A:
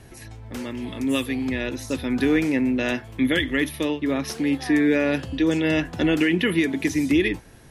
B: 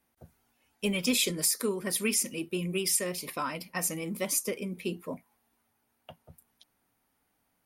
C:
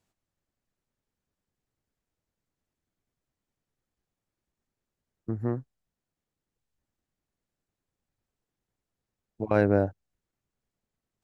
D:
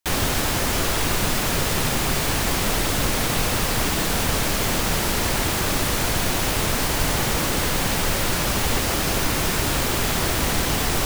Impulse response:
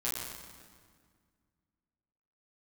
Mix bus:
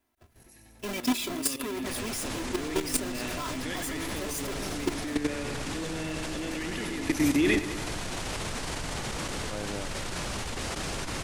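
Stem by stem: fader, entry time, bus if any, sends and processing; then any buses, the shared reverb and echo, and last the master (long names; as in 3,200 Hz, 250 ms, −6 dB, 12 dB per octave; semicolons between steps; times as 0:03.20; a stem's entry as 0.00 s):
+1.5 dB, 0.25 s, no send, echo send −10.5 dB, high-shelf EQ 9,000 Hz +11 dB; automatic ducking −23 dB, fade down 0.25 s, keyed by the second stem
−2.5 dB, 0.00 s, no send, no echo send, each half-wave held at its own peak; comb filter 3 ms, depth 75%
−9.5 dB, 0.00 s, no send, no echo send, no processing
−3.5 dB, 1.80 s, no send, no echo send, low-pass filter 9,700 Hz 24 dB per octave; brickwall limiter −19 dBFS, peak gain reduction 9.5 dB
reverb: not used
echo: repeating echo 95 ms, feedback 56%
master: output level in coarse steps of 11 dB; saturating transformer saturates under 130 Hz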